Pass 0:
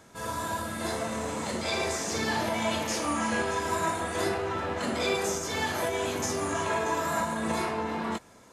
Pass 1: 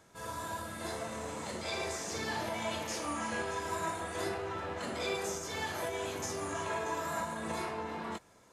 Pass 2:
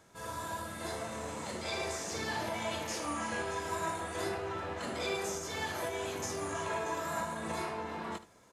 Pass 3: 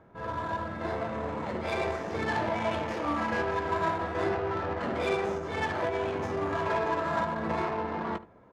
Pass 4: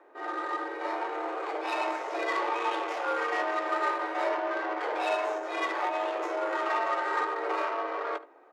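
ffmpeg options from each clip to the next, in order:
ffmpeg -i in.wav -af "equalizer=frequency=240:width_type=o:width=0.31:gain=-5.5,volume=-7dB" out.wav
ffmpeg -i in.wav -af "aecho=1:1:74:0.178" out.wav
ffmpeg -i in.wav -af "bass=frequency=250:gain=0,treble=frequency=4000:gain=-7,adynamicsmooth=sensitivity=6:basefreq=1400,volume=7.5dB" out.wav
ffmpeg -i in.wav -af "afreqshift=240" out.wav

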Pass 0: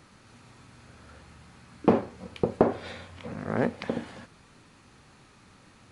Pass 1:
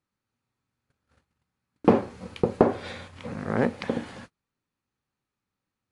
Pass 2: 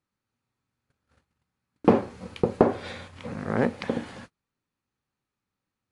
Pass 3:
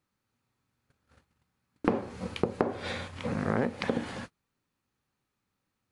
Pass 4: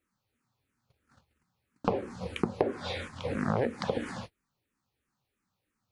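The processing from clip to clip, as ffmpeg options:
ffmpeg -i in.wav -af "bandreject=frequency=660:width=18,agate=range=-33dB:threshold=-46dB:ratio=16:detection=peak,volume=2.5dB" out.wav
ffmpeg -i in.wav -af anull out.wav
ffmpeg -i in.wav -af "acompressor=threshold=-27dB:ratio=8,volume=3.5dB" out.wav
ffmpeg -i in.wav -filter_complex "[0:a]asplit=2[link_01][link_02];[link_02]afreqshift=-3[link_03];[link_01][link_03]amix=inputs=2:normalize=1,volume=2.5dB" out.wav

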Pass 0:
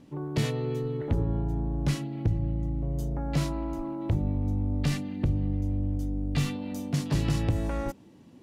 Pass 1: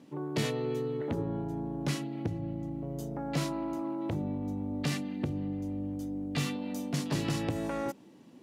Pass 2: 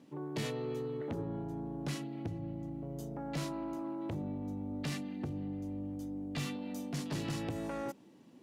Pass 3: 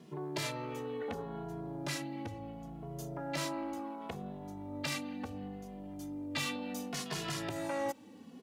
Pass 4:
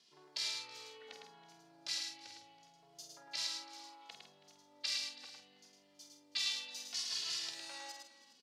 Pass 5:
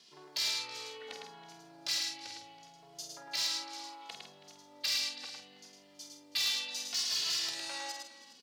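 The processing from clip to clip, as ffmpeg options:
ffmpeg -i in.wav -af "highpass=190" out.wav
ffmpeg -i in.wav -af "asoftclip=type=tanh:threshold=-25dB,volume=-4dB" out.wav
ffmpeg -i in.wav -filter_complex "[0:a]acrossover=split=560|4900[link_01][link_02][link_03];[link_01]acompressor=threshold=-48dB:ratio=6[link_04];[link_04][link_02][link_03]amix=inputs=3:normalize=0,asplit=2[link_05][link_06];[link_06]adelay=2.4,afreqshift=-0.7[link_07];[link_05][link_07]amix=inputs=2:normalize=1,volume=9dB" out.wav
ffmpeg -i in.wav -filter_complex "[0:a]bandpass=frequency=4700:width_type=q:width=2.7:csg=0,asplit=2[link_01][link_02];[link_02]adelay=48,volume=-7dB[link_03];[link_01][link_03]amix=inputs=2:normalize=0,aecho=1:1:107|325|410:0.596|0.112|0.119,volume=6dB" out.wav
ffmpeg -i in.wav -af "asoftclip=type=tanh:threshold=-33.5dB,volume=8dB" out.wav

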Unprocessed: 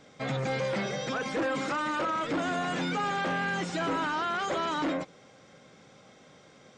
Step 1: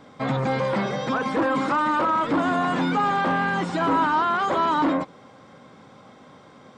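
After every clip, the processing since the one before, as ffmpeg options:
ffmpeg -i in.wav -af "equalizer=frequency=100:width_type=o:width=0.67:gain=4,equalizer=frequency=250:width_type=o:width=0.67:gain=6,equalizer=frequency=1000:width_type=o:width=0.67:gain=9,equalizer=frequency=2500:width_type=o:width=0.67:gain=-3,equalizer=frequency=6300:width_type=o:width=0.67:gain=-8,volume=4dB" out.wav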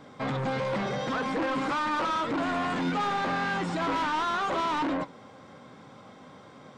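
ffmpeg -i in.wav -af "asoftclip=type=tanh:threshold=-24.5dB,flanger=delay=6.2:depth=5.9:regen=81:speed=1.2:shape=triangular,volume=3.5dB" out.wav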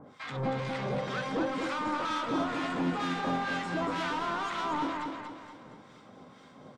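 ffmpeg -i in.wav -filter_complex "[0:a]acrossover=split=1200[link_01][link_02];[link_01]aeval=exprs='val(0)*(1-1/2+1/2*cos(2*PI*2.1*n/s))':channel_layout=same[link_03];[link_02]aeval=exprs='val(0)*(1-1/2-1/2*cos(2*PI*2.1*n/s))':channel_layout=same[link_04];[link_03][link_04]amix=inputs=2:normalize=0,aecho=1:1:235|470|705|940|1175:0.562|0.247|0.109|0.0479|0.0211" out.wav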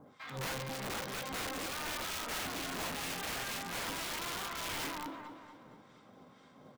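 ffmpeg -i in.wav -af "aeval=exprs='(mod(25.1*val(0)+1,2)-1)/25.1':channel_layout=same,acrusher=bits=7:mode=log:mix=0:aa=0.000001,volume=-6dB" out.wav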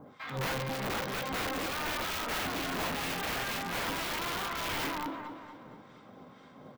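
ffmpeg -i in.wav -af "equalizer=frequency=8400:width=0.58:gain=-7,volume=6dB" out.wav

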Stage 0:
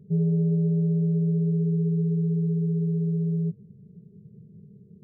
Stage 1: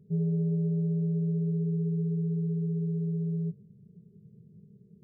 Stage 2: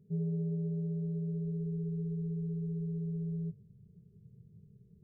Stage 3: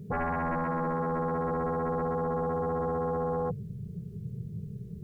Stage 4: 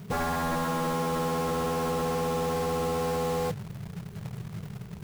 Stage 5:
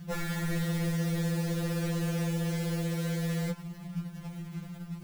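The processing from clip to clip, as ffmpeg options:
ffmpeg -i in.wav -af "bandreject=frequency=48.04:width_type=h:width=4,bandreject=frequency=96.08:width_type=h:width=4,bandreject=frequency=144.12:width_type=h:width=4,bandreject=frequency=192.16:width_type=h:width=4,bandreject=frequency=240.2:width_type=h:width=4,bandreject=frequency=288.24:width_type=h:width=4,bandreject=frequency=336.28:width_type=h:width=4,bandreject=frequency=384.32:width_type=h:width=4,bandreject=frequency=432.36:width_type=h:width=4,bandreject=frequency=480.4:width_type=h:width=4,bandreject=frequency=528.44:width_type=h:width=4,bandreject=frequency=576.48:width_type=h:width=4,bandreject=frequency=624.52:width_type=h:width=4,bandreject=frequency=672.56:width_type=h:width=4,bandreject=frequency=720.6:width_type=h:width=4,volume=-5dB" out.wav
ffmpeg -i in.wav -af "asubboost=boost=8.5:cutoff=80,volume=-5dB" out.wav
ffmpeg -i in.wav -af "aeval=exprs='0.0447*sin(PI/2*5.62*val(0)/0.0447)':channel_layout=same" out.wav
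ffmpeg -i in.wav -af "acrusher=bits=2:mode=log:mix=0:aa=0.000001" out.wav
ffmpeg -i in.wav -af "afftfilt=real='re*2.83*eq(mod(b,8),0)':imag='im*2.83*eq(mod(b,8),0)':win_size=2048:overlap=0.75" out.wav

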